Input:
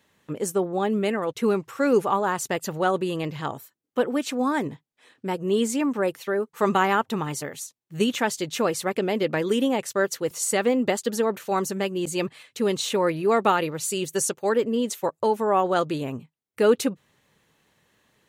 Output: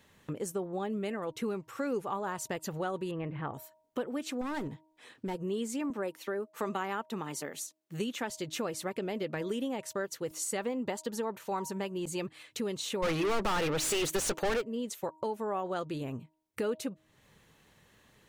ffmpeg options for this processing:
-filter_complex "[0:a]asettb=1/sr,asplit=3[a][b][c];[a]atrim=end=3.114[d];[b]atrim=start=3.11:end=3.54,asetpts=PTS-STARTPTS,afade=t=in:d=0.004:c=qsin,afade=t=out:st=0.426:d=0.004:c=qsin,lowpass=f=2.4k:w=0.5412,lowpass=f=2.4k:w=1.3066[e];[c]atrim=start=3.536[f];[d][e]acrossfade=d=0.004:c1=hsin:c2=qsin[g];[g][f]acrossfade=d=0.004:c1=qsin:c2=hsin,asettb=1/sr,asplit=3[h][i][j];[h]atrim=end=4.414[k];[i]atrim=start=4.41:end=5.35,asetpts=PTS-STARTPTS,afade=t=in:d=0.004:c=qsin,afade=t=out:st=0.936:d=0.004:c=qsin,volume=23.5dB,asoftclip=hard,volume=-23.5dB[l];[j]atrim=start=5.346[m];[k][l]acrossfade=d=0.004:c1=hsin:c2=qsin[n];[n][m]acrossfade=d=0.004:c1=qsin:c2=hsin,asettb=1/sr,asplit=3[o][p][q];[o]atrim=end=5.904[r];[p]atrim=start=5.9:end=8.3,asetpts=PTS-STARTPTS,afade=t=in:d=0.004:c=qsin,afade=t=out:st=2.396:d=0.004:c=qsin,highpass=f=180:w=0.5412,highpass=f=180:w=1.3066[s];[q]atrim=start=8.296[t];[r][s]acrossfade=d=0.004:c1=hsin:c2=qsin[u];[u][t]acrossfade=d=0.004:c1=qsin:c2=hsin,asettb=1/sr,asplit=3[v][w][x];[v]atrim=end=10.584[y];[w]atrim=start=10.58:end=12.2,asetpts=PTS-STARTPTS,afade=t=in:d=0.004:c=qsin,afade=t=out:st=1.616:d=0.004:c=qsin,equalizer=f=940:w=4.6:g=8.5[z];[x]atrim=start=12.196[aa];[y][z]acrossfade=d=0.004:c1=hsin:c2=qsin[ab];[ab][aa]acrossfade=d=0.004:c1=qsin:c2=hsin,asplit=3[ac][ad][ae];[ac]afade=t=out:st=13.02:d=0.02[af];[ad]asplit=2[ag][ah];[ah]highpass=f=720:p=1,volume=36dB,asoftclip=type=tanh:threshold=-6.5dB[ai];[ag][ai]amix=inputs=2:normalize=0,lowpass=f=4.8k:p=1,volume=-6dB,afade=t=in:st=13.02:d=0.02,afade=t=out:st=14.6:d=0.02[aj];[ae]afade=t=in:st=14.6:d=0.02[ak];[af][aj][ak]amix=inputs=3:normalize=0,lowshelf=f=78:g=11.5,bandreject=f=314.5:t=h:w=4,bandreject=f=629:t=h:w=4,bandreject=f=943.5:t=h:w=4,acompressor=threshold=-40dB:ratio=2.5,volume=1.5dB"

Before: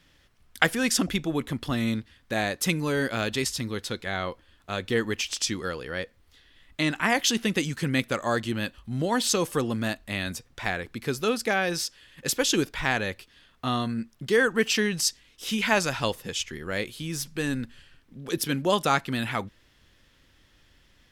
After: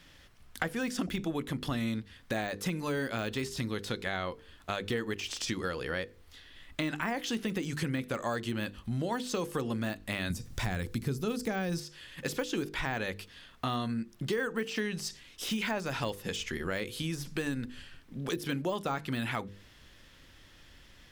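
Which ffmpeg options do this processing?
-filter_complex "[0:a]asettb=1/sr,asplit=3[a][b][c];[a]atrim=end=10.304[d];[b]atrim=start=10.3:end=11.8,asetpts=PTS-STARTPTS,afade=t=in:d=0.004:c=qsin,afade=t=out:st=1.496:d=0.004:c=qsin,bass=f=250:g=12,treble=f=4k:g=12[e];[c]atrim=start=11.796[f];[d][e]acrossfade=d=0.004:c1=hsin:c2=qsin[g];[g][f]acrossfade=d=0.004:c1=qsin:c2=hsin,deesser=0.85,bandreject=f=50:t=h:w=6,bandreject=f=100:t=h:w=6,bandreject=f=150:t=h:w=6,bandreject=f=200:t=h:w=6,bandreject=f=250:t=h:w=6,bandreject=f=300:t=h:w=6,bandreject=f=350:t=h:w=6,bandreject=f=400:t=h:w=6,bandreject=f=450:t=h:w=6,bandreject=f=500:t=h:w=6,acompressor=threshold=-36dB:ratio=4,volume=4.5dB"

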